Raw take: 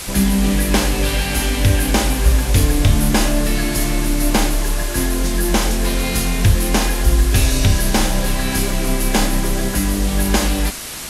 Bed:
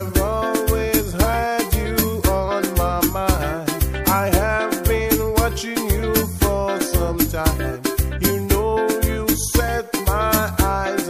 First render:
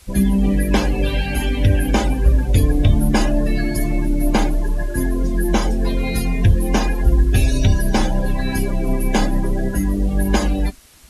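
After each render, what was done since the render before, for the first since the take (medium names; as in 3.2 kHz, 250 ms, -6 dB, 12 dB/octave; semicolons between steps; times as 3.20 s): noise reduction 20 dB, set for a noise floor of -22 dBFS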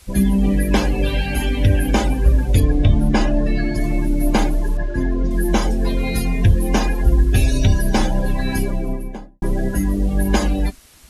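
2.60–3.84 s: distance through air 72 m; 4.77–5.31 s: distance through air 130 m; 8.53–9.42 s: studio fade out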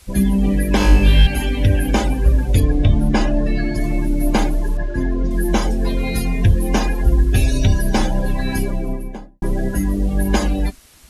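0.78–1.27 s: flutter echo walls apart 3.4 m, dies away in 0.61 s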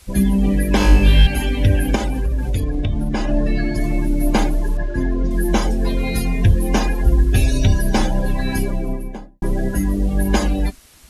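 1.95–3.29 s: compression 5:1, threshold -16 dBFS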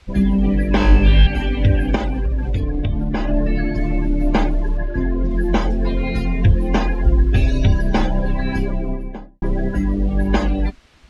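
low-pass 3.4 kHz 12 dB/octave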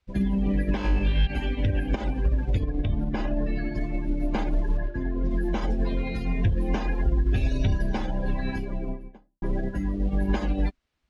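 peak limiter -13.5 dBFS, peak gain reduction 11.5 dB; upward expansion 2.5:1, over -34 dBFS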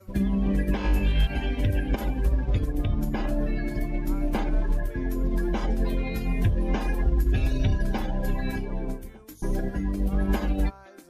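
add bed -27 dB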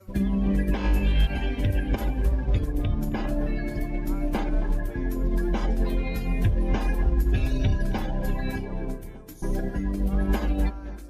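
filtered feedback delay 269 ms, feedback 55%, low-pass 1.8 kHz, level -14.5 dB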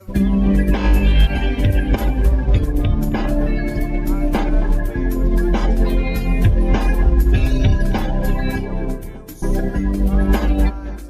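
trim +8.5 dB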